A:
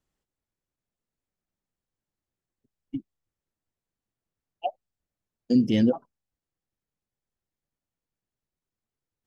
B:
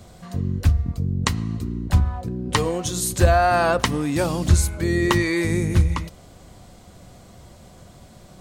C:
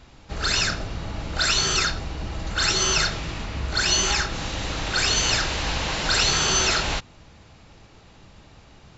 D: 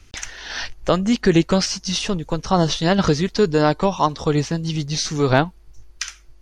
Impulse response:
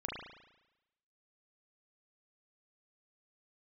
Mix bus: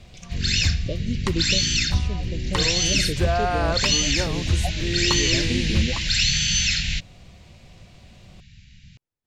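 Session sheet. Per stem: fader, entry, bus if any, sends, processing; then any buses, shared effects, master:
−1.5 dB, 0.00 s, no send, downward compressor, threshold −24 dBFS, peak gain reduction 8.5 dB
−6.0 dB, 0.00 s, no send, no processing
+3.0 dB, 0.00 s, no send, inverse Chebyshev band-stop filter 330–1,200 Hz, stop band 40 dB
−12.0 dB, 0.00 s, no send, Chebyshev band-stop filter 600–2,300 Hz, order 4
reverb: not used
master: high-shelf EQ 6,700 Hz −8 dB

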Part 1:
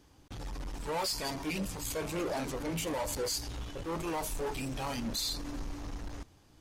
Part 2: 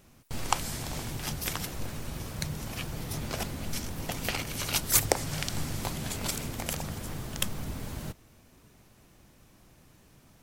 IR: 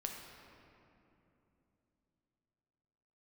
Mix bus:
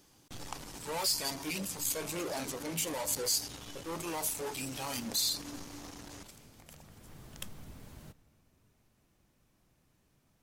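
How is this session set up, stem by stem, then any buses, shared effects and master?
−3.5 dB, 0.00 s, no send, high-pass filter 120 Hz 12 dB per octave; high-shelf EQ 4,000 Hz +11.5 dB
−14.5 dB, 0.00 s, send −13.5 dB, automatic ducking −12 dB, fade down 1.75 s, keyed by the first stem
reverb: on, RT60 3.1 s, pre-delay 7 ms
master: no processing

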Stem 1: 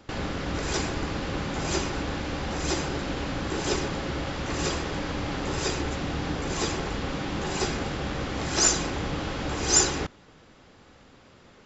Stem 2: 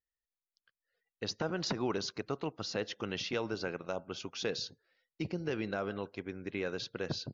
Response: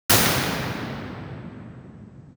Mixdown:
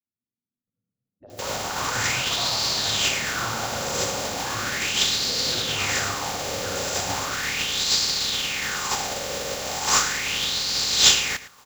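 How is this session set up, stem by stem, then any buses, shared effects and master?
−3.5 dB, 1.30 s, no send, echo send −15.5 dB, compressing power law on the bin magnitudes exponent 0.32; notch comb filter 330 Hz; auto-filter bell 0.37 Hz 520–4,500 Hz +14 dB
−1.0 dB, 0.00 s, send −23.5 dB, no echo send, gate on every frequency bin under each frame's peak −10 dB weak; envelope-controlled low-pass 250–1,400 Hz up, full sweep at −38 dBFS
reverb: on, RT60 3.4 s, pre-delay 47 ms
echo: single-tap delay 110 ms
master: high-shelf EQ 4,700 Hz +10.5 dB

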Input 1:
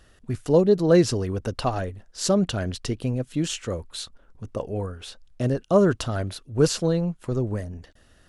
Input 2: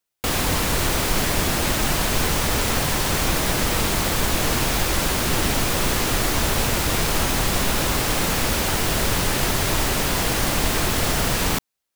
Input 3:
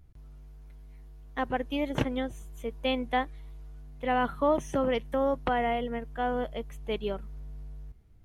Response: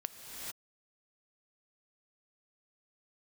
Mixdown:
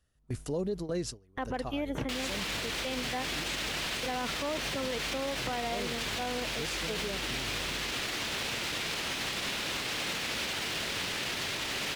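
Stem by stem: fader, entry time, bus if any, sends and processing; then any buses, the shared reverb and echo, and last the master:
−1.5 dB, 0.00 s, no send, high-shelf EQ 4,600 Hz +8 dB; automatic ducking −14 dB, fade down 1.20 s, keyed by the third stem
−8.5 dB, 1.85 s, no send, high-shelf EQ 4,400 Hz −8.5 dB; brickwall limiter −14.5 dBFS, peak gain reduction 5.5 dB; meter weighting curve D
+1.0 dB, 0.00 s, no send, gain into a clipping stage and back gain 20 dB; high-pass filter 41 Hz 12 dB per octave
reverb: not used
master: noise gate with hold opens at −24 dBFS; brickwall limiter −25 dBFS, peak gain reduction 11 dB

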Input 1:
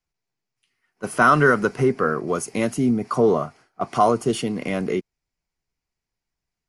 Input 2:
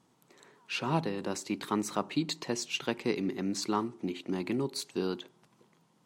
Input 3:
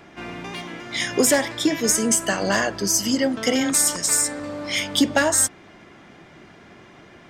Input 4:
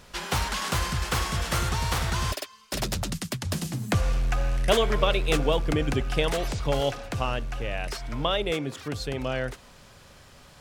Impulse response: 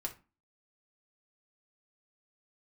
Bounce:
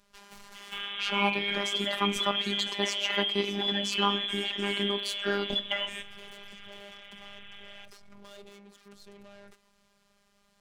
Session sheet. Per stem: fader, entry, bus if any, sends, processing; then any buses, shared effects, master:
−15.5 dB, 0.00 s, bus A, no send, random phases in long frames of 200 ms; flat-topped bell 810 Hz +13.5 dB 2.6 octaves
−1.0 dB, 0.30 s, no bus, send −9 dB, parametric band 1,200 Hz +5.5 dB 2.1 octaves
+2.0 dB, 0.55 s, bus A, send −18.5 dB, three-way crossover with the lows and the highs turned down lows −13 dB, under 300 Hz, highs −16 dB, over 3,300 Hz
−12.5 dB, 0.00 s, no bus, no send, tube saturation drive 32 dB, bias 0.45; automatic ducking −17 dB, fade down 0.20 s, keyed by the first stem
bus A: 0.0 dB, voice inversion scrambler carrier 3,700 Hz; downward compressor, threshold −27 dBFS, peak gain reduction 14.5 dB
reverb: on, RT60 0.30 s, pre-delay 3 ms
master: hum removal 197.3 Hz, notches 29; phases set to zero 201 Hz

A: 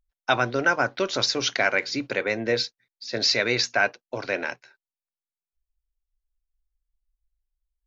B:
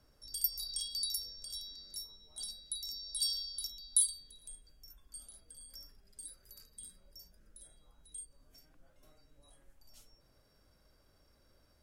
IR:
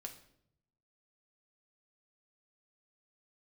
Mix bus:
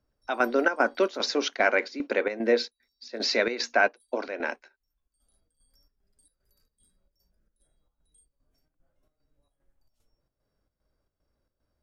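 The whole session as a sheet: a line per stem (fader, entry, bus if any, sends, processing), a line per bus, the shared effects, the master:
+3.0 dB, 0.00 s, no send, elliptic high-pass filter 220 Hz, stop band 40 dB
−7.5 dB, 0.00 s, no send, automatic ducking −20 dB, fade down 1.85 s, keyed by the first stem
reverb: not used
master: high-shelf EQ 2,200 Hz −10 dB; square-wave tremolo 2.5 Hz, depth 65%, duty 70%

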